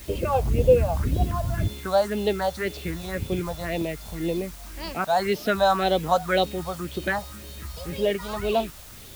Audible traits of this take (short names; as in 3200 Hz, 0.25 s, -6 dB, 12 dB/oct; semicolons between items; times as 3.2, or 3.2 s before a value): phasing stages 4, 1.9 Hz, lowest notch 330–1600 Hz; a quantiser's noise floor 8-bit, dither triangular